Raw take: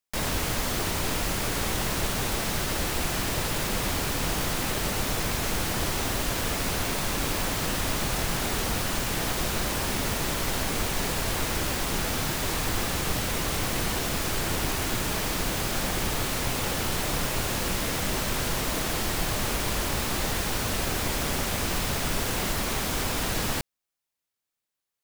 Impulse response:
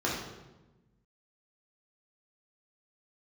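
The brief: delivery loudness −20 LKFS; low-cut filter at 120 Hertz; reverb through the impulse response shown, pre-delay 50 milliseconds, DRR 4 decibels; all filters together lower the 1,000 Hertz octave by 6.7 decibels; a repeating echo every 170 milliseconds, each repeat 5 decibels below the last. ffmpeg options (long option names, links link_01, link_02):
-filter_complex "[0:a]highpass=120,equalizer=frequency=1000:width_type=o:gain=-9,aecho=1:1:170|340|510|680|850|1020|1190:0.562|0.315|0.176|0.0988|0.0553|0.031|0.0173,asplit=2[link_01][link_02];[1:a]atrim=start_sample=2205,adelay=50[link_03];[link_02][link_03]afir=irnorm=-1:irlink=0,volume=-13.5dB[link_04];[link_01][link_04]amix=inputs=2:normalize=0,volume=6dB"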